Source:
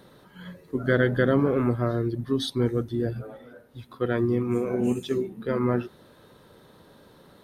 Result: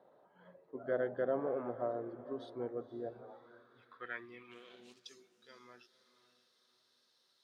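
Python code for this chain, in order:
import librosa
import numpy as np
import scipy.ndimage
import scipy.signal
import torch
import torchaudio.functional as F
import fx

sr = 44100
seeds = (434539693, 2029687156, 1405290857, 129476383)

y = fx.median_filter(x, sr, points=25, at=(4.51, 5.06))
y = fx.echo_diffused(y, sr, ms=519, feedback_pct=42, wet_db=-14.5)
y = fx.filter_sweep_bandpass(y, sr, from_hz=680.0, to_hz=5200.0, start_s=3.07, end_s=5.11, q=3.0)
y = F.gain(torch.from_numpy(y), -3.5).numpy()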